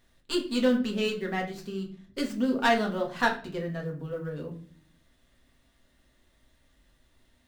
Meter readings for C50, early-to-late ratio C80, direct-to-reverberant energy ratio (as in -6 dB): 10.5 dB, 15.0 dB, 0.5 dB